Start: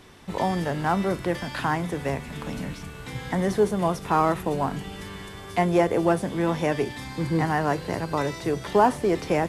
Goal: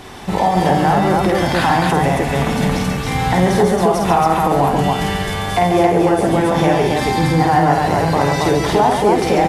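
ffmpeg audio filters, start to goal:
ffmpeg -i in.wav -filter_complex "[0:a]equalizer=frequency=780:width_type=o:width=0.34:gain=8.5,acompressor=threshold=-24dB:ratio=3,asplit=2[link_01][link_02];[link_02]alimiter=level_in=1dB:limit=-24dB:level=0:latency=1,volume=-1dB,volume=1dB[link_03];[link_01][link_03]amix=inputs=2:normalize=0,acontrast=89,asplit=2[link_04][link_05];[link_05]aecho=0:1:49.56|139.9|274.1:0.708|0.501|0.794[link_06];[link_04][link_06]amix=inputs=2:normalize=0,volume=-1dB" out.wav

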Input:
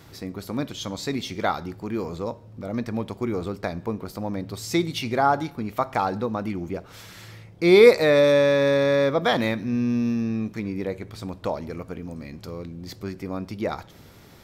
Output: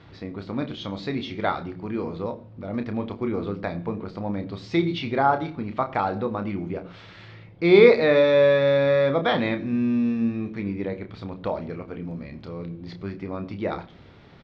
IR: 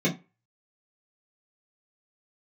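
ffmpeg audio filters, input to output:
-filter_complex "[0:a]lowpass=frequency=3900:width=0.5412,lowpass=frequency=3900:width=1.3066,asplit=2[link_01][link_02];[link_02]adelay=30,volume=-8dB[link_03];[link_01][link_03]amix=inputs=2:normalize=0,asplit=2[link_04][link_05];[1:a]atrim=start_sample=2205,adelay=79[link_06];[link_05][link_06]afir=irnorm=-1:irlink=0,volume=-31.5dB[link_07];[link_04][link_07]amix=inputs=2:normalize=0,volume=-1dB"

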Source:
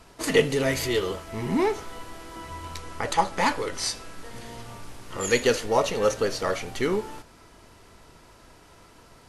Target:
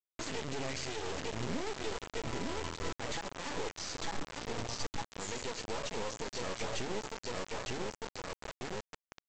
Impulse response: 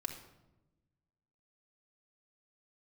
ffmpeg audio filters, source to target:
-filter_complex "[0:a]asplit=2[link_01][link_02];[link_02]aecho=0:1:902|1804|2706|3608:0.266|0.114|0.0492|0.0212[link_03];[link_01][link_03]amix=inputs=2:normalize=0,acompressor=threshold=-28dB:ratio=10,adynamicequalizer=threshold=0.00316:dfrequency=1300:dqfactor=1.4:tfrequency=1300:tqfactor=1.4:attack=5:release=100:ratio=0.375:range=3:mode=cutabove:tftype=bell,afftdn=noise_reduction=14:noise_floor=-45,alimiter=level_in=6.5dB:limit=-24dB:level=0:latency=1:release=78,volume=-6.5dB,aresample=16000,acrusher=bits=4:dc=4:mix=0:aa=0.000001,aresample=44100,volume=3.5dB"

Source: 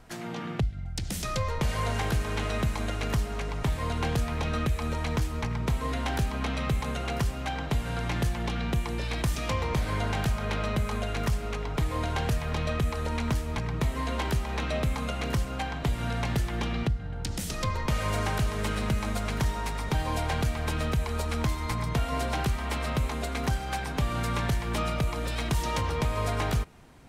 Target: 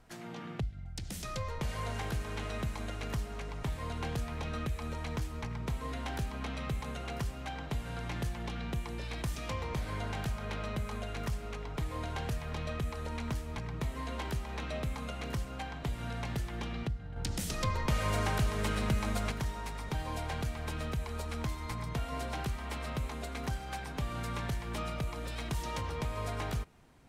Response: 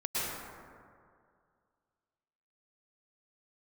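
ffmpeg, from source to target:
-filter_complex "[0:a]asettb=1/sr,asplit=3[link_01][link_02][link_03];[link_01]atrim=end=17.164[link_04];[link_02]atrim=start=17.16:end=19.32,asetpts=PTS-STARTPTS,afade=type=in:duration=0.004:curve=qsin,afade=type=out:start_time=2.156:duration=0.004:curve=qsin,acontrast=32[link_05];[link_03]atrim=start=19.316[link_06];[link_04][link_05]acrossfade=duration=0.004:curve1=hsin:curve2=qsin[link_07];[link_07][link_06]acrossfade=duration=0.004:curve1=qsin:curve2=hsin,volume=-8dB"

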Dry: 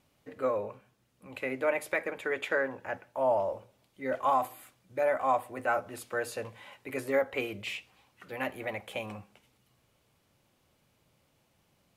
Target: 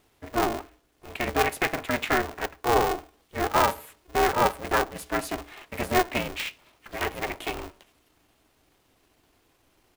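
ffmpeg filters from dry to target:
ffmpeg -i in.wav -af "bandreject=frequency=126.3:width_type=h:width=4,bandreject=frequency=252.6:width_type=h:width=4,bandreject=frequency=378.9:width_type=h:width=4,bandreject=frequency=505.2:width_type=h:width=4,bandreject=frequency=631.5:width_type=h:width=4,bandreject=frequency=757.8:width_type=h:width=4,bandreject=frequency=884.1:width_type=h:width=4,atempo=1.2,aeval=exprs='val(0)*sgn(sin(2*PI*180*n/s))':channel_layout=same,volume=5.5dB" out.wav

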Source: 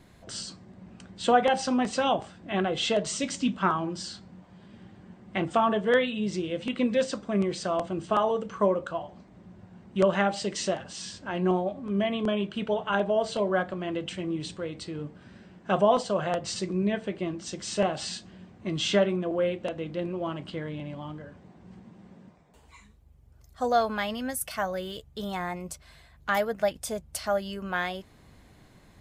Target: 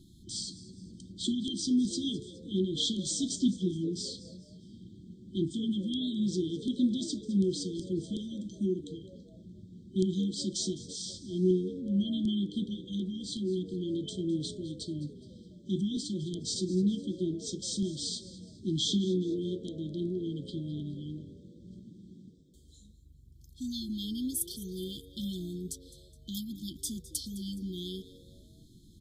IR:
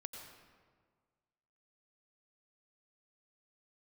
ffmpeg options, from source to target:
-filter_complex "[0:a]afftfilt=real='re*(1-between(b*sr/4096,380,3100))':imag='im*(1-between(b*sr/4096,380,3100))':win_size=4096:overlap=0.75,asplit=4[link_01][link_02][link_03][link_04];[link_02]adelay=209,afreqshift=91,volume=-17.5dB[link_05];[link_03]adelay=418,afreqshift=182,volume=-25dB[link_06];[link_04]adelay=627,afreqshift=273,volume=-32.6dB[link_07];[link_01][link_05][link_06][link_07]amix=inputs=4:normalize=0"

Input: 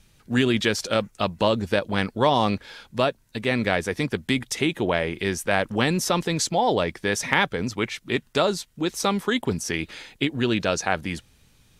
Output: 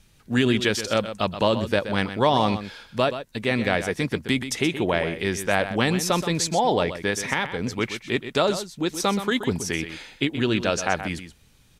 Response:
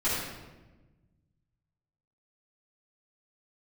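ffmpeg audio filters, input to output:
-filter_complex "[0:a]asettb=1/sr,asplit=3[link_01][link_02][link_03];[link_01]atrim=end=7.104[link_04];[link_02]atrim=start=7.1:end=7.64,asetpts=PTS-STARTPTS,afade=type=in:duration=0.004:curve=qsin,afade=type=out:start_time=0.536:duration=0.004:curve=qsin,acompressor=threshold=-24dB:ratio=2[link_05];[link_03]atrim=start=7.636[link_06];[link_04][link_05]acrossfade=duration=0.004:curve1=hsin:curve2=qsin[link_07];[link_07][link_06]acrossfade=duration=0.004:curve1=qsin:curve2=hsin,asplit=2[link_08][link_09];[link_09]aecho=0:1:126:0.282[link_10];[link_08][link_10]amix=inputs=2:normalize=0"

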